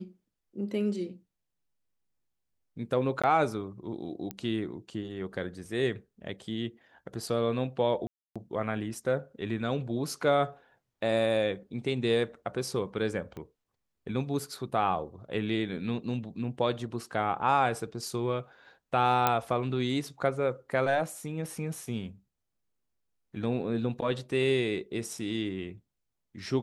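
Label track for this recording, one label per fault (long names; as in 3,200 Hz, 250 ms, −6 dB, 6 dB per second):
3.220000	3.240000	drop-out 16 ms
4.310000	4.310000	click −20 dBFS
8.070000	8.360000	drop-out 286 ms
13.370000	13.370000	click −29 dBFS
19.270000	19.270000	click −9 dBFS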